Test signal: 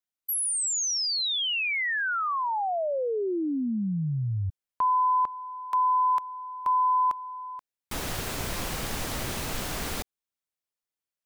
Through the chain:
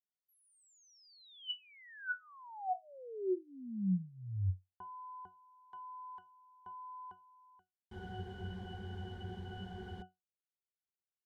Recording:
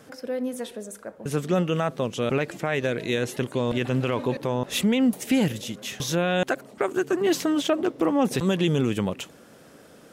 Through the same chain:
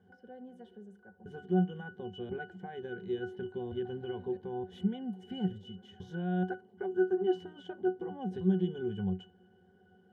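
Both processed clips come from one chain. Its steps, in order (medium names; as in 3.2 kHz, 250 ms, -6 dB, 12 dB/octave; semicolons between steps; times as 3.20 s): pitch-class resonator F#, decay 0.18 s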